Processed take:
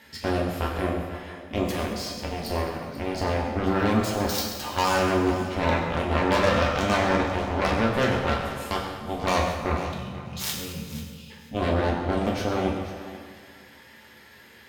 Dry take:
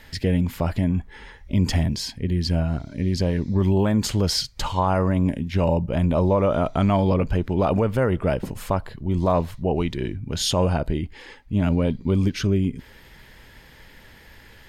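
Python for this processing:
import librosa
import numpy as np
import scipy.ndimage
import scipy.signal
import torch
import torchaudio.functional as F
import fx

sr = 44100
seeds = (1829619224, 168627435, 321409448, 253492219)

p1 = fx.spec_erase(x, sr, start_s=9.76, length_s=1.54, low_hz=220.0, high_hz=2400.0)
p2 = scipy.signal.sosfilt(scipy.signal.butter(2, 170.0, 'highpass', fs=sr, output='sos'), p1)
p3 = fx.hpss(p2, sr, part='harmonic', gain_db=3)
p4 = fx.cheby_harmonics(p3, sr, harmonics=(7,), levels_db=(-11,), full_scale_db=-7.5)
p5 = fx.doubler(p4, sr, ms=14.0, db=-11)
p6 = p5 + fx.echo_thinned(p5, sr, ms=489, feedback_pct=17, hz=220.0, wet_db=-14.5, dry=0)
p7 = fx.rev_fdn(p6, sr, rt60_s=1.6, lf_ratio=0.95, hf_ratio=0.85, size_ms=78.0, drr_db=-2.0)
y = p7 * librosa.db_to_amplitude(-6.0)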